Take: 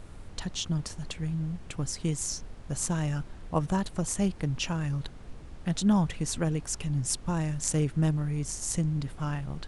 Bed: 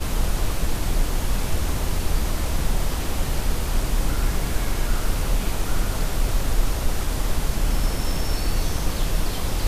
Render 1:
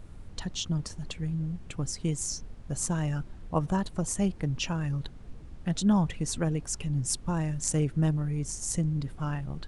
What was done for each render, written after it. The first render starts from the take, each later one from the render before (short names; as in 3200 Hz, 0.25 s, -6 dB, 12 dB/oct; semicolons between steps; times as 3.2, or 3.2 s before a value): denoiser 6 dB, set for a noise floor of -45 dBFS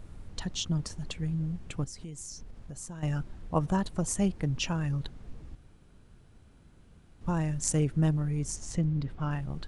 1.84–3.03 compressor 4:1, threshold -40 dBFS; 5.55–7.21 room tone; 8.56–9.31 LPF 4400 Hz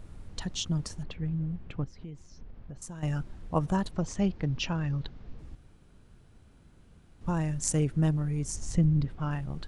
1.03–2.82 air absorption 260 m; 3.91–5.39 LPF 5500 Hz 24 dB/oct; 8.55–9.05 low shelf 200 Hz +7.5 dB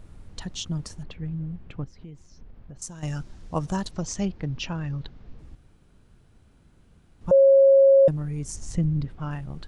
2.79–4.25 bell 5800 Hz +10 dB 1.3 oct; 7.31–8.08 bleep 545 Hz -11.5 dBFS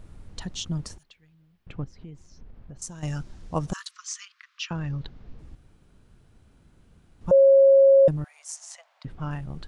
0.98–1.67 pre-emphasis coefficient 0.97; 3.73–4.71 steep high-pass 1100 Hz 96 dB/oct; 8.24–9.05 steep high-pass 630 Hz 72 dB/oct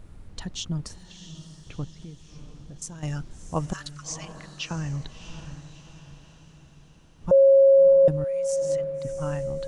diffused feedback echo 0.666 s, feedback 48%, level -11 dB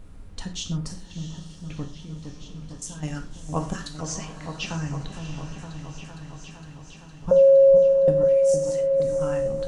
on a send: repeats that get brighter 0.461 s, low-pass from 750 Hz, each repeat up 1 oct, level -6 dB; on the sum: non-linear reverb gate 0.15 s falling, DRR 4 dB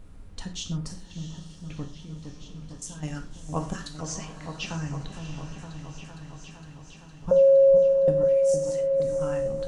gain -2.5 dB